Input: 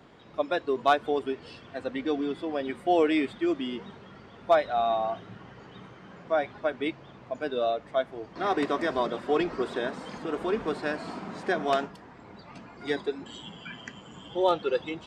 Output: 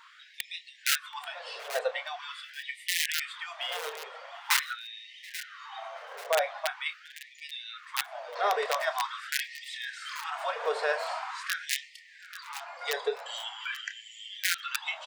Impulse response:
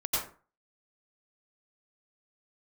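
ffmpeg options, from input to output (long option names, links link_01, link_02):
-filter_complex "[0:a]asplit=2[link_01][link_02];[link_02]adelay=29,volume=-11dB[link_03];[link_01][link_03]amix=inputs=2:normalize=0,aeval=exprs='(mod(6.31*val(0)+1,2)-1)/6.31':channel_layout=same,asplit=2[link_04][link_05];[link_05]aecho=0:1:836|1672:0.0891|0.0294[link_06];[link_04][link_06]amix=inputs=2:normalize=0,alimiter=limit=-23.5dB:level=0:latency=1:release=96,asplit=2[link_07][link_08];[link_08]adelay=729,lowpass=frequency=3100:poles=1,volume=-19dB,asplit=2[link_09][link_10];[link_10]adelay=729,lowpass=frequency=3100:poles=1,volume=0.42,asplit=2[link_11][link_12];[link_12]adelay=729,lowpass=frequency=3100:poles=1,volume=0.42[link_13];[link_09][link_11][link_13]amix=inputs=3:normalize=0[link_14];[link_07][link_14]amix=inputs=2:normalize=0,afftfilt=real='re*gte(b*sr/1024,410*pow(1800/410,0.5+0.5*sin(2*PI*0.44*pts/sr)))':imag='im*gte(b*sr/1024,410*pow(1800/410,0.5+0.5*sin(2*PI*0.44*pts/sr)))':win_size=1024:overlap=0.75,volume=6.5dB"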